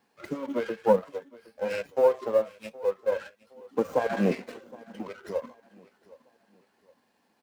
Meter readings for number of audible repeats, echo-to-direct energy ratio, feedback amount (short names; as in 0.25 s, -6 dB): 2, -21.0 dB, 36%